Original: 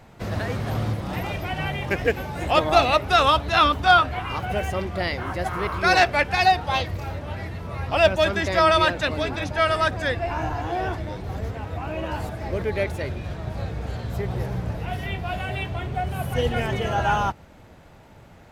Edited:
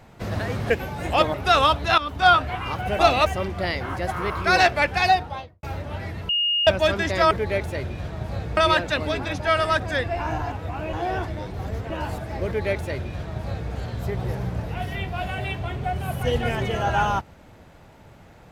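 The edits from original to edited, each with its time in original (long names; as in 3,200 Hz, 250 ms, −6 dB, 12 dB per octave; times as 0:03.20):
0:00.70–0:02.07: remove
0:02.71–0:02.98: move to 0:04.63
0:03.62–0:03.92: fade in, from −17 dB
0:06.40–0:07.00: fade out and dull
0:07.66–0:08.04: beep over 2,850 Hz −19 dBFS
0:11.60–0:12.01: move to 0:10.63
0:12.57–0:13.83: duplicate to 0:08.68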